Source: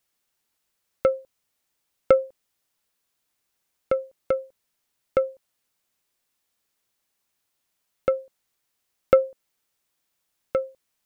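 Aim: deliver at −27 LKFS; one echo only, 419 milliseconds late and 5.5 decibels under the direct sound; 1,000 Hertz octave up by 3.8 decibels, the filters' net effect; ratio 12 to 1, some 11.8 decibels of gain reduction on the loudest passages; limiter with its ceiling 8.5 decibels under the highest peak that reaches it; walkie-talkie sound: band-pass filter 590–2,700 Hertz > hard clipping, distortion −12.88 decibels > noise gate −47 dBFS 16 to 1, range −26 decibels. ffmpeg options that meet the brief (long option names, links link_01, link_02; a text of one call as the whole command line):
ffmpeg -i in.wav -af "equalizer=frequency=1000:width_type=o:gain=7,acompressor=threshold=-21dB:ratio=12,alimiter=limit=-13dB:level=0:latency=1,highpass=590,lowpass=2700,aecho=1:1:419:0.531,asoftclip=type=hard:threshold=-26.5dB,agate=range=-26dB:threshold=-47dB:ratio=16,volume=14dB" out.wav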